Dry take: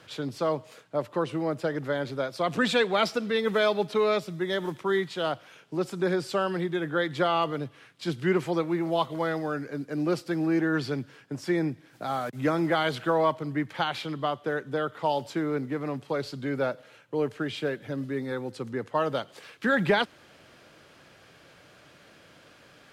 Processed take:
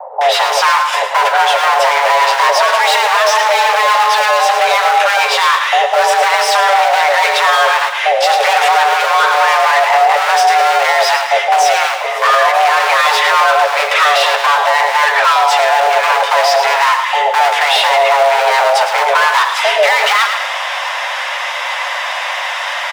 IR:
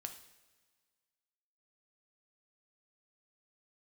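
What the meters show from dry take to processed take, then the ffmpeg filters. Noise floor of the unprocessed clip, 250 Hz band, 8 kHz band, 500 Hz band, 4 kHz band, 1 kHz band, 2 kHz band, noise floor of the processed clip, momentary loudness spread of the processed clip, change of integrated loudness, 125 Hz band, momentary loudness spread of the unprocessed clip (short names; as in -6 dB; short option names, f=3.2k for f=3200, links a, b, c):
-56 dBFS, under -25 dB, +26.5 dB, +13.0 dB, +21.5 dB, +23.5 dB, +21.5 dB, -20 dBFS, 6 LU, +17.5 dB, under -40 dB, 9 LU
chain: -filter_complex "[0:a]bandreject=f=3.9k:w=7.7,acrossover=split=710[a][b];[a]acrusher=bits=4:mode=log:mix=0:aa=0.000001[c];[b]flanger=delay=7.9:depth=3.4:regen=38:speed=0.14:shape=triangular[d];[c][d]amix=inputs=2:normalize=0,asplit=2[e][f];[f]highpass=f=720:p=1,volume=39dB,asoftclip=type=tanh:threshold=-11.5dB[g];[e][g]amix=inputs=2:normalize=0,lowpass=f=2.3k:p=1,volume=-6dB,acrossover=split=440[h][i];[i]adelay=210[j];[h][j]amix=inputs=2:normalize=0,afreqshift=420,asplit=2[k][l];[l]aecho=0:1:110|220|330|440|550:0.335|0.141|0.0591|0.0248|0.0104[m];[k][m]amix=inputs=2:normalize=0,alimiter=level_in=11.5dB:limit=-1dB:release=50:level=0:latency=1,volume=-1dB"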